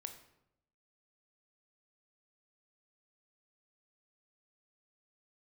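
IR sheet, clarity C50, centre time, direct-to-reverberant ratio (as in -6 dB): 9.5 dB, 14 ms, 6.5 dB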